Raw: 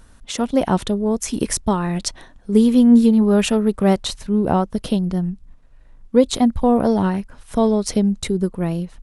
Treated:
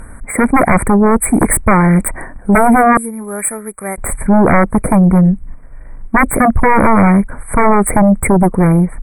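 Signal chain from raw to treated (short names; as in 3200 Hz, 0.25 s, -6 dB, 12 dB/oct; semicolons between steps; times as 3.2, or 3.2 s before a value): 2.97–3.98 pre-emphasis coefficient 0.97; sine folder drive 15 dB, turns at -2 dBFS; brick-wall FIR band-stop 2400–7700 Hz; gain -3 dB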